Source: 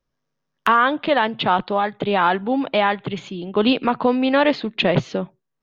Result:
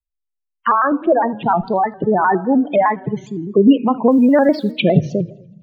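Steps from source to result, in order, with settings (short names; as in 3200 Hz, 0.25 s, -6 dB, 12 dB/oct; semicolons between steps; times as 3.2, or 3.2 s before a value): per-bin expansion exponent 1.5; 0.72–1.48 LPF 1500 Hz 12 dB/oct; spectral gate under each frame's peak -15 dB strong; tilt shelf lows +5 dB, about 720 Hz; in parallel at -2 dB: limiter -15.5 dBFS, peak gain reduction 10 dB; 4.11–4.71 on the sum: requantised 10-bit, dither triangular; thinning echo 81 ms, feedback 58%, high-pass 430 Hz, level -24 dB; on a send at -15 dB: reverb RT60 0.80 s, pre-delay 3 ms; on the sum: shaped vibrato square 4.9 Hz, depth 100 cents; gain +2 dB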